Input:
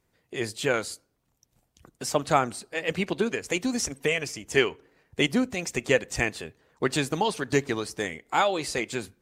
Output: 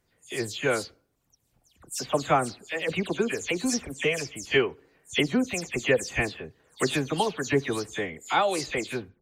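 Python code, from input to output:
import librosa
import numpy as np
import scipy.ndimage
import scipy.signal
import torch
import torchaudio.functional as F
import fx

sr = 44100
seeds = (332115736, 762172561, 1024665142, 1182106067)

y = fx.spec_delay(x, sr, highs='early', ms=127)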